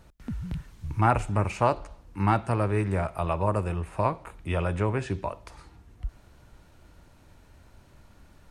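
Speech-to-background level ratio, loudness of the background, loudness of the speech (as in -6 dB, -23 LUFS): 11.5 dB, -39.0 LUFS, -27.5 LUFS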